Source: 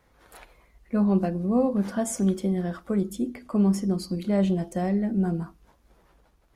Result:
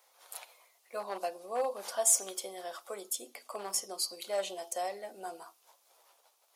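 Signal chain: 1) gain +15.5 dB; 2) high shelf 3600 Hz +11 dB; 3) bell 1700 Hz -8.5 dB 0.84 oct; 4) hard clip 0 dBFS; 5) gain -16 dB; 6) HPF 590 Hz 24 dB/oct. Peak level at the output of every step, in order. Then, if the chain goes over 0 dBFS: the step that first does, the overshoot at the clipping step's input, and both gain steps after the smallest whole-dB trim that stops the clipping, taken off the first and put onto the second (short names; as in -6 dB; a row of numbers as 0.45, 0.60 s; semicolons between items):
+3.5, +6.0, +6.0, 0.0, -16.0, -15.0 dBFS; step 1, 6.0 dB; step 1 +9.5 dB, step 5 -10 dB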